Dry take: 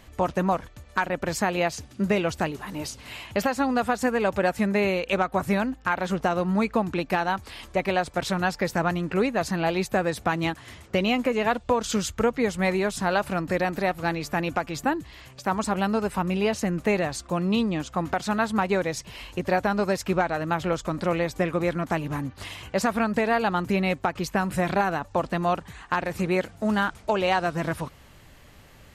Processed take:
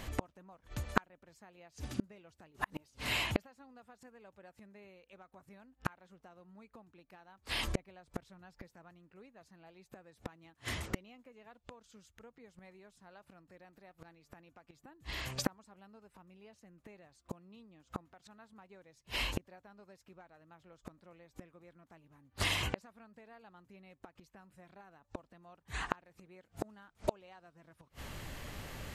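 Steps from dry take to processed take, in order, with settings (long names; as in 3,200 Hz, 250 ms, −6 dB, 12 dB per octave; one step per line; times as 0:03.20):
gate with flip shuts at −24 dBFS, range −39 dB
0:07.67–0:08.67: low-shelf EQ 190 Hz +7 dB
level +5.5 dB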